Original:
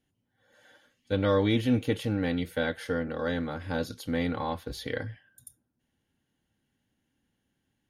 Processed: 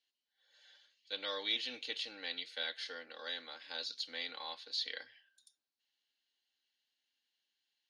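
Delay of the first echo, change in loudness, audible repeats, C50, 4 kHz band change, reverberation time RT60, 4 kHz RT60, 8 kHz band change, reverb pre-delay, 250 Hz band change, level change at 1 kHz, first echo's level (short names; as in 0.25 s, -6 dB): none, -10.0 dB, none, none, +3.0 dB, none, none, -7.5 dB, none, -29.0 dB, -13.5 dB, none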